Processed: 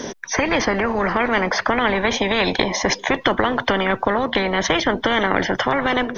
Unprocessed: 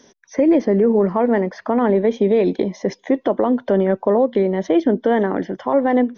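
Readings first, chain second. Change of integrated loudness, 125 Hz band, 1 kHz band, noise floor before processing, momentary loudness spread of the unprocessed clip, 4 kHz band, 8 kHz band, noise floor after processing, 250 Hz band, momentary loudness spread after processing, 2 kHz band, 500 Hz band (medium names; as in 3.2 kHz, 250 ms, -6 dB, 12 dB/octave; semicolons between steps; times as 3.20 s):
-1.5 dB, -2.0 dB, +4.0 dB, -56 dBFS, 6 LU, +18.5 dB, no reading, -38 dBFS, -5.5 dB, 2 LU, +13.0 dB, -5.0 dB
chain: treble shelf 2.6 kHz -6 dB; spectrum-flattening compressor 4:1; trim +5.5 dB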